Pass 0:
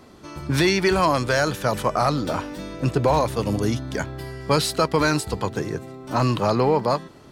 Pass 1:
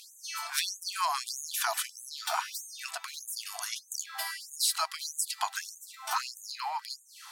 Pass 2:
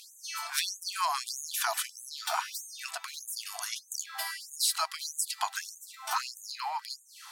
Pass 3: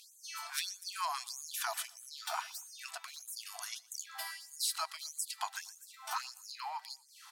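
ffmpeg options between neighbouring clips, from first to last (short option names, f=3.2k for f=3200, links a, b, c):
-af "aemphasis=mode=production:type=cd,acompressor=threshold=-28dB:ratio=16,afftfilt=real='re*gte(b*sr/1024,640*pow(6300/640,0.5+0.5*sin(2*PI*1.6*pts/sr)))':imag='im*gte(b*sr/1024,640*pow(6300/640,0.5+0.5*sin(2*PI*1.6*pts/sr)))':win_size=1024:overlap=0.75,volume=6dB"
-af anull
-af "aecho=1:1:119|238:0.0668|0.0254,volume=-6.5dB"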